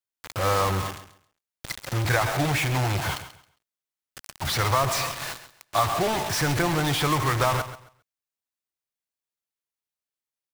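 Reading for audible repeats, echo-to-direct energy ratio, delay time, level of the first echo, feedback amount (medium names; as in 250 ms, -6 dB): 2, -13.0 dB, 135 ms, -13.0 dB, 23%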